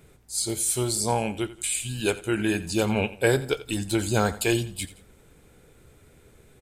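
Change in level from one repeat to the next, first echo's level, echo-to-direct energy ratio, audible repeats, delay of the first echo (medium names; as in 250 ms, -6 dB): -8.5 dB, -16.5 dB, -16.0 dB, 2, 86 ms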